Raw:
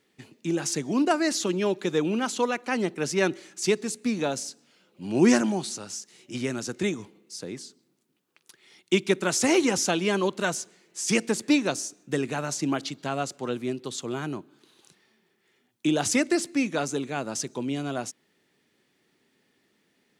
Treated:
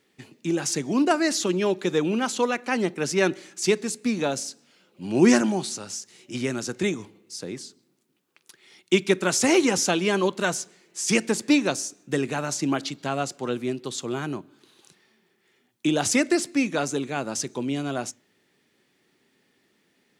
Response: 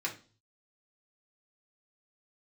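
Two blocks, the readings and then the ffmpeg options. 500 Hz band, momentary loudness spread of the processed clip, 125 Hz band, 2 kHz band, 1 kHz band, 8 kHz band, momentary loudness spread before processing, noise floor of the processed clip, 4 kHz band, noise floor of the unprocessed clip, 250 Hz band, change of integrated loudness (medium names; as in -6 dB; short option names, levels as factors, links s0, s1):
+2.0 dB, 14 LU, +1.5 dB, +2.5 dB, +2.0 dB, +2.0 dB, 14 LU, -68 dBFS, +2.0 dB, -70 dBFS, +2.0 dB, +2.0 dB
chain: -filter_complex "[0:a]asplit=2[s0][s1];[1:a]atrim=start_sample=2205[s2];[s1][s2]afir=irnorm=-1:irlink=0,volume=0.1[s3];[s0][s3]amix=inputs=2:normalize=0,volume=1.19"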